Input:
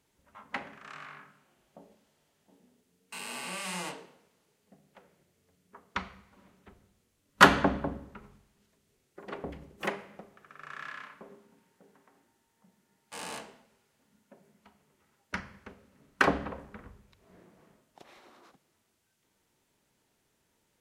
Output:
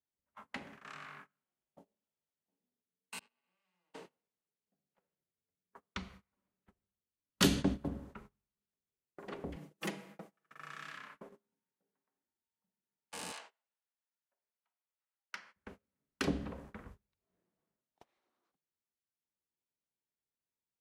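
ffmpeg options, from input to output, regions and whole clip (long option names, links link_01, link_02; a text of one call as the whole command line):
ffmpeg -i in.wav -filter_complex "[0:a]asettb=1/sr,asplit=3[link_01][link_02][link_03];[link_01]atrim=end=3.194[link_04];[link_02]atrim=start=3.19:end=3.94,asetpts=PTS-STARTPTS,afade=type=in:duration=0.004:curve=qsin,afade=type=out:start_time=0.746:duration=0.004:curve=qsin,lowpass=4100,agate=range=-33dB:threshold=-29dB:ratio=3:release=100:detection=peak,acompressor=threshold=-53dB:ratio=6:attack=3.2:release=140:knee=1:detection=peak[link_05];[link_03]atrim=start=3.936[link_06];[link_04][link_05]acrossfade=duration=0.004:curve1=hsin:curve2=qsin[link_07];[link_07][link_06]acrossfade=duration=0.004:curve1=qsin:curve2=hsin,asettb=1/sr,asplit=3[link_08][link_09][link_10];[link_08]atrim=end=7.444[link_11];[link_09]atrim=start=7.44:end=7.88,asetpts=PTS-STARTPTS,afade=type=in:duration=0.004:curve=qsin,afade=type=out:start_time=0.436:duration=0.004:curve=qsin,agate=range=-14dB:threshold=-33dB:ratio=16:release=100:detection=peak,highshelf=frequency=6000:gain=10.5[link_12];[link_10]atrim=start=7.876[link_13];[link_11][link_12]acrossfade=duration=0.004:curve1=hsin:curve2=qsin[link_14];[link_14][link_13]acrossfade=duration=0.004:curve1=qsin:curve2=hsin,asettb=1/sr,asplit=3[link_15][link_16][link_17];[link_15]atrim=end=9.564[link_18];[link_16]atrim=start=9.56:end=10.98,asetpts=PTS-STARTPTS,afade=type=in:duration=0.004:curve=qsin,afade=type=out:start_time=1.416:duration=0.004:curve=qsin,highpass=frequency=130:width=0.5412,highpass=frequency=130:width=1.3066,highshelf=frequency=5100:gain=4,aecho=1:1:6.2:0.55,atrim=end_sample=62622[link_19];[link_17]atrim=start=10.976[link_20];[link_18][link_19]acrossfade=duration=0.004:curve1=hsin:curve2=qsin[link_21];[link_21][link_20]acrossfade=duration=0.004:curve1=qsin:curve2=hsin,asettb=1/sr,asplit=3[link_22][link_23][link_24];[link_22]atrim=end=13.324[link_25];[link_23]atrim=start=13.32:end=15.56,asetpts=PTS-STARTPTS,afade=type=in:duration=0.004:curve=qsin,afade=type=out:start_time=2.236:duration=0.004:curve=qsin,highpass=850,adynamicsmooth=sensitivity=7.5:basefreq=6600[link_26];[link_24]atrim=start=15.556[link_27];[link_25][link_26]acrossfade=duration=0.004:curve1=hsin:curve2=qsin[link_28];[link_28][link_27]acrossfade=duration=0.004:curve1=qsin:curve2=hsin,agate=range=-26dB:threshold=-50dB:ratio=16:detection=peak,acrossover=split=400|3000[link_29][link_30][link_31];[link_30]acompressor=threshold=-45dB:ratio=4[link_32];[link_29][link_32][link_31]amix=inputs=3:normalize=0,volume=-1.5dB" out.wav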